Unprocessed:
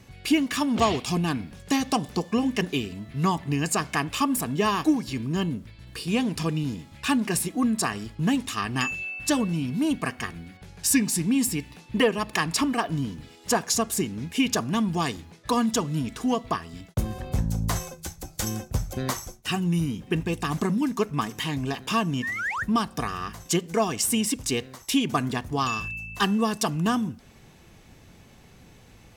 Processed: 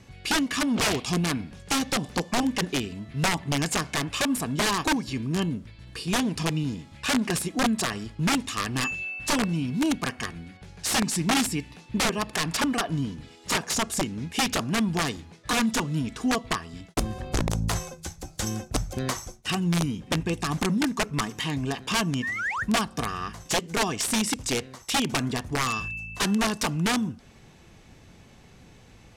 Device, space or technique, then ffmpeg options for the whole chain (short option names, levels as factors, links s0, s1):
overflowing digital effects unit: -af "aeval=exprs='(mod(7.5*val(0)+1,2)-1)/7.5':c=same,lowpass=9600"